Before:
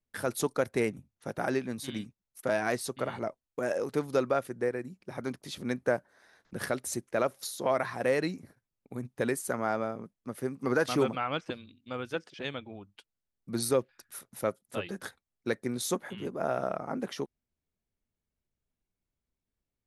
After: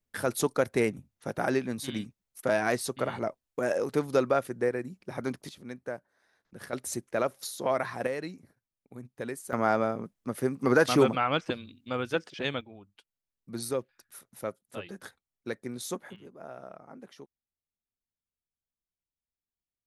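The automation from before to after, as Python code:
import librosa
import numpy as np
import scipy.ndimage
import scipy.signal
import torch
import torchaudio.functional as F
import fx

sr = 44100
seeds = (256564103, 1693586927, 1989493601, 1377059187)

y = fx.gain(x, sr, db=fx.steps((0.0, 2.5), (5.49, -9.0), (6.73, 0.0), (8.07, -6.5), (9.53, 5.0), (12.61, -4.5), (16.16, -13.5)))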